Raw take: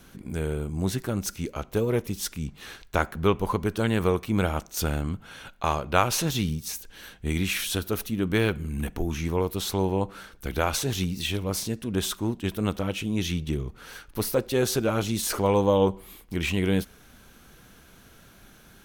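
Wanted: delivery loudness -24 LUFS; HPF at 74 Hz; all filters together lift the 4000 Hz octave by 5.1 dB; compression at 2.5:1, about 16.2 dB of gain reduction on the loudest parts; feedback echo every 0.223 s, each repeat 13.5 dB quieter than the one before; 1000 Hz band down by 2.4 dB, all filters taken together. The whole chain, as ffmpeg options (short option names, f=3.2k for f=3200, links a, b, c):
-af "highpass=74,equalizer=f=1k:t=o:g=-3.5,equalizer=f=4k:t=o:g=6.5,acompressor=threshold=-43dB:ratio=2.5,aecho=1:1:223|446:0.211|0.0444,volume=16dB"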